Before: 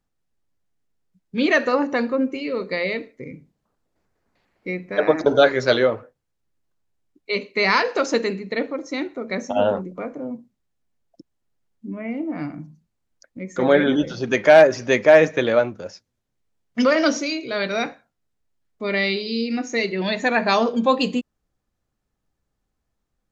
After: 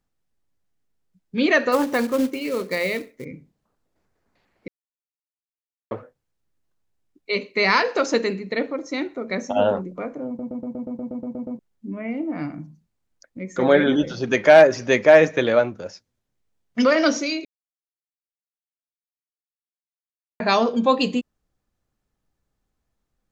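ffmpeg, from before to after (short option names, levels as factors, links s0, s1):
-filter_complex "[0:a]asettb=1/sr,asplit=3[s0][s1][s2];[s0]atrim=end=1.724[s3];[s1]atrim=start=1.72:end=3.25,asetpts=PTS-STARTPTS,afade=t=in:d=0.004:c=qsin,afade=t=out:st=1.526:d=0.004:c=qsin,acrusher=bits=4:mode=log:mix=0:aa=0.000001[s4];[s2]atrim=start=3.246[s5];[s3][s4]acrossfade=d=0.004:c1=hsin:c2=qsin[s6];[s6][s5]acrossfade=d=0.004:c1=qsin:c2=hsin,asplit=16[s7][s8][s9][s10][s11][s12][s13][s14][s15][s16][s17][s18][s19][s20][s21][s22];[s7]atrim=end=4.68,asetpts=PTS-STARTPTS,afade=t=out:st=4.676:d=0.004:c=hsin[s23];[s8]atrim=start=4.68:end=5.91,asetpts=PTS-STARTPTS,volume=0[s24];[s9]atrim=start=5.91:end=10.392,asetpts=PTS-STARTPTS,afade=t=in:d=0.004:c=hsin[s25];[s10]atrim=start=10.268:end=10.392[s26];[s11]atrim=start=10.268:end=10.392[s27];[s12]atrim=start=10.268:end=10.392[s28];[s13]atrim=start=10.268:end=10.392[s29];[s14]atrim=start=10.268:end=10.392[s30];[s15]atrim=start=10.268:end=10.392[s31];[s16]atrim=start=10.268:end=10.392[s32];[s17]atrim=start=10.268:end=10.392[s33];[s18]atrim=start=10.268:end=10.392[s34];[s19]atrim=start=10.268:end=10.392[s35];[s20]atrim=start=11.588:end=17.45,asetpts=PTS-STARTPTS,afade=t=out:st=5.858:d=0.004:c=hsin[s36];[s21]atrim=start=17.45:end=20.4,asetpts=PTS-STARTPTS,volume=0[s37];[s22]atrim=start=20.4,asetpts=PTS-STARTPTS,afade=t=in:d=0.004:c=hsin[s38];[s23][s24][s25]concat=n=3:v=0:a=1[s39];[s39][s26]acrossfade=d=0.004:c1=hsin:c2=hsin[s40];[s40][s27]acrossfade=d=0.004:c1=hsin:c2=hsin[s41];[s41][s28]acrossfade=d=0.004:c1=hsin:c2=hsin[s42];[s42][s29]acrossfade=d=0.004:c1=hsin:c2=hsin[s43];[s43][s30]acrossfade=d=0.004:c1=hsin:c2=hsin[s44];[s44][s31]acrossfade=d=0.004:c1=hsin:c2=hsin[s45];[s45][s32]acrossfade=d=0.004:c1=hsin:c2=hsin[s46];[s46][s33]acrossfade=d=0.004:c1=hsin:c2=hsin[s47];[s47][s34]acrossfade=d=0.004:c1=hsin:c2=hsin[s48];[s48][s35]acrossfade=d=0.004:c1=hsin:c2=hsin[s49];[s36][s37][s38]concat=n=3:v=0:a=1[s50];[s49][s50]acrossfade=d=0.004:c1=hsin:c2=hsin"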